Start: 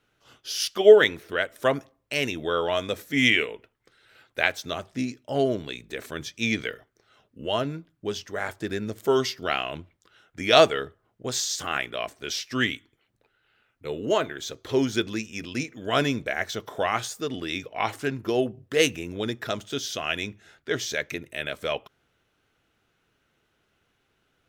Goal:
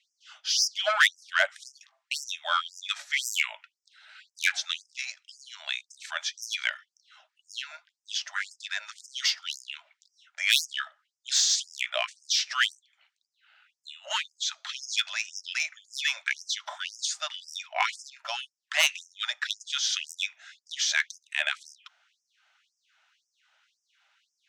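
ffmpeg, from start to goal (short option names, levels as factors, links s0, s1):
-filter_complex "[0:a]bandreject=f=1100:w=11,acrossover=split=110|870[s0][s1][s2];[s0]acompressor=threshold=0.00158:ratio=16[s3];[s1]flanger=delay=0.1:depth=6:regen=84:speed=0.39:shape=triangular[s4];[s3][s4][s2]amix=inputs=3:normalize=0,lowpass=f=7200:w=0.5412,lowpass=f=7200:w=1.3066,asoftclip=type=tanh:threshold=0.133,afftfilt=real='re*gte(b*sr/1024,550*pow(5000/550,0.5+0.5*sin(2*PI*1.9*pts/sr)))':imag='im*gte(b*sr/1024,550*pow(5000/550,0.5+0.5*sin(2*PI*1.9*pts/sr)))':win_size=1024:overlap=0.75,volume=2.11"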